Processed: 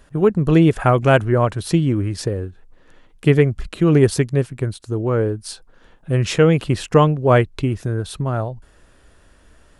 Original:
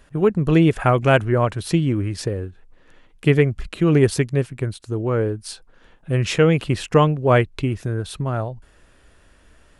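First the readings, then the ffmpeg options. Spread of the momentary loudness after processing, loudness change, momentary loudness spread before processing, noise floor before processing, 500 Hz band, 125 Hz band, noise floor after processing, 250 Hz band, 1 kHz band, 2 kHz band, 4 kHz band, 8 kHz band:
11 LU, +2.0 dB, 11 LU, −54 dBFS, +2.0 dB, +2.0 dB, −52 dBFS, +2.0 dB, +1.5 dB, 0.0 dB, +0.5 dB, +2.0 dB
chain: -af "equalizer=frequency=2400:width=1.5:gain=-3.5,volume=2dB"

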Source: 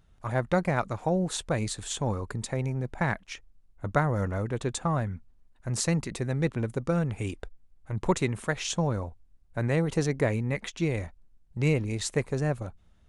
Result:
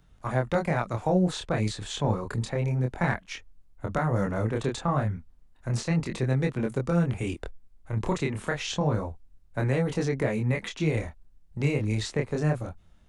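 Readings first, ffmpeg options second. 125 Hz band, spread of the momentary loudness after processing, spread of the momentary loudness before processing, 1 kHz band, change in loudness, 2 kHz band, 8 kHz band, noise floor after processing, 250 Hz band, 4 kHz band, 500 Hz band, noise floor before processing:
+2.0 dB, 8 LU, 11 LU, +0.5 dB, +1.0 dB, +0.5 dB, −5.5 dB, −57 dBFS, +1.5 dB, +0.5 dB, +1.0 dB, −60 dBFS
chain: -filter_complex "[0:a]alimiter=limit=-18dB:level=0:latency=1:release=199,flanger=delay=22.5:depth=6:speed=0.3,acrossover=split=190|790|5300[link_01][link_02][link_03][link_04];[link_04]acompressor=threshold=-55dB:ratio=6[link_05];[link_01][link_02][link_03][link_05]amix=inputs=4:normalize=0,volume=6dB"

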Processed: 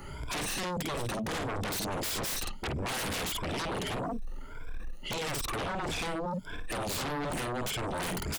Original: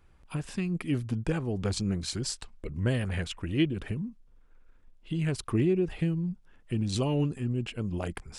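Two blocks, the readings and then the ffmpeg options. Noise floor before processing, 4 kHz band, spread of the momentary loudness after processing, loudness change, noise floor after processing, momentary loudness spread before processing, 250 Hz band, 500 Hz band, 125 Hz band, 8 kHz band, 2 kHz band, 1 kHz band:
−58 dBFS, +4.0 dB, 6 LU, −2.5 dB, −41 dBFS, 9 LU, −7.5 dB, −2.0 dB, −9.0 dB, +5.0 dB, +5.0 dB, +10.0 dB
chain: -filter_complex "[0:a]afftfilt=real='re*pow(10,18/40*sin(2*PI*(1.7*log(max(b,1)*sr/1024/100)/log(2)-(1.6)*(pts-256)/sr)))':imag='im*pow(10,18/40*sin(2*PI*(1.7*log(max(b,1)*sr/1024/100)/log(2)-(1.6)*(pts-256)/sr)))':win_size=1024:overlap=0.75,adynamicequalizer=threshold=0.00224:dfrequency=3400:dqfactor=2.9:tfrequency=3400:tqfactor=2.9:attack=5:release=100:ratio=0.375:range=3:mode=boostabove:tftype=bell,areverse,acompressor=threshold=-31dB:ratio=8,areverse,asplit=2[link_01][link_02];[link_02]adelay=50,volume=-6.5dB[link_03];[link_01][link_03]amix=inputs=2:normalize=0,acrossover=split=200|5500[link_04][link_05][link_06];[link_04]acompressor=threshold=-47dB:ratio=4[link_07];[link_05]acompressor=threshold=-43dB:ratio=4[link_08];[link_06]acompressor=threshold=-51dB:ratio=4[link_09];[link_07][link_08][link_09]amix=inputs=3:normalize=0,aeval=exprs='0.0447*sin(PI/2*8.91*val(0)/0.0447)':channel_layout=same,volume=-3.5dB"

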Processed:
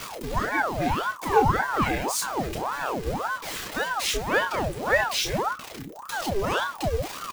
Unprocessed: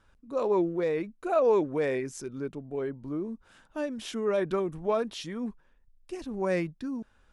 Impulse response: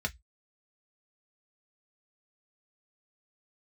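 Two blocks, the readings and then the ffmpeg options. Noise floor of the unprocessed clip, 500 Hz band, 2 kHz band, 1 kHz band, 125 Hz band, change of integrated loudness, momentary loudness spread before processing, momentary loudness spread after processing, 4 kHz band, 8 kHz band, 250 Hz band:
−64 dBFS, −1.0 dB, +15.0 dB, +11.5 dB, +8.5 dB, +4.0 dB, 13 LU, 9 LU, +14.5 dB, +16.0 dB, −0.5 dB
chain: -filter_complex "[0:a]aeval=exprs='val(0)+0.5*0.0141*sgn(val(0))':channel_layout=same,asplit=2[link_01][link_02];[link_02]acompressor=threshold=-32dB:ratio=6,volume=-2dB[link_03];[link_01][link_03]amix=inputs=2:normalize=0,crystalizer=i=3:c=0,asplit=2[link_04][link_05];[link_05]adelay=30,volume=-5.5dB[link_06];[link_04][link_06]amix=inputs=2:normalize=0[link_07];[1:a]atrim=start_sample=2205[link_08];[link_07][link_08]afir=irnorm=-1:irlink=0,aeval=exprs='val(0)*sin(2*PI*740*n/s+740*0.75/1.8*sin(2*PI*1.8*n/s))':channel_layout=same,volume=-3dB"

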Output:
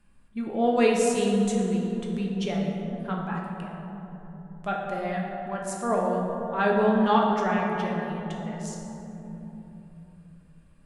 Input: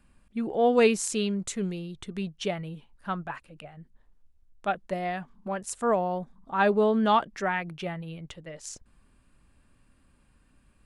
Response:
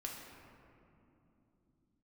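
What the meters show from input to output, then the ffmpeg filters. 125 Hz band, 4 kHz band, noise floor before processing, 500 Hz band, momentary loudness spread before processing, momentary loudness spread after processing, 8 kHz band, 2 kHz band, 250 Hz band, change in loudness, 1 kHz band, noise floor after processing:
+5.5 dB, −0.5 dB, −64 dBFS, +1.5 dB, 19 LU, 19 LU, −1.0 dB, +0.5 dB, +4.5 dB, +1.5 dB, +1.5 dB, −54 dBFS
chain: -filter_complex "[1:a]atrim=start_sample=2205,asetrate=30870,aresample=44100[link_01];[0:a][link_01]afir=irnorm=-1:irlink=0"

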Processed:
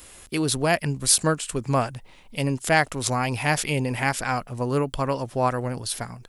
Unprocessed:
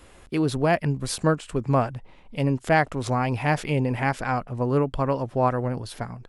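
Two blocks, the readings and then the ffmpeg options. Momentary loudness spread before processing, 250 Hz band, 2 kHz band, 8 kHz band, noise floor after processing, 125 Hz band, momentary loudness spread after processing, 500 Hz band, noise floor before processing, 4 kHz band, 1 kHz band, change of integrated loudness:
8 LU, −2.0 dB, +3.0 dB, +13.5 dB, −48 dBFS, −2.0 dB, 9 LU, −1.5 dB, −51 dBFS, +8.0 dB, −0.5 dB, +0.5 dB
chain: -af "crystalizer=i=5:c=0,volume=-2dB"

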